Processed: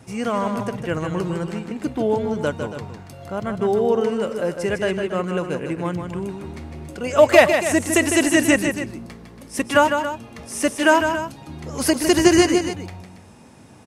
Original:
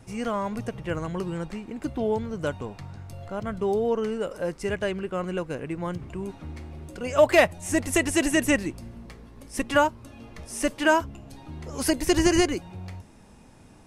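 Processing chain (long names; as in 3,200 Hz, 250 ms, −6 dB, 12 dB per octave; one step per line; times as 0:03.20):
high-pass filter 97 Hz 12 dB per octave
loudspeakers that aren't time-aligned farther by 53 metres −7 dB, 96 metres −12 dB
level +5 dB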